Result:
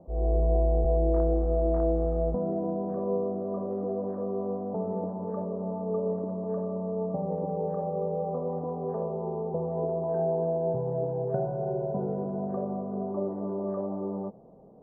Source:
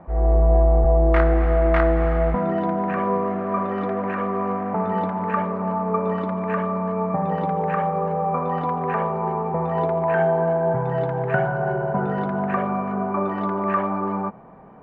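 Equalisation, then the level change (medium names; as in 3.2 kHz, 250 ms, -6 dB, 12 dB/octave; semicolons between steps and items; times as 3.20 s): four-pole ladder low-pass 650 Hz, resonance 40%; 0.0 dB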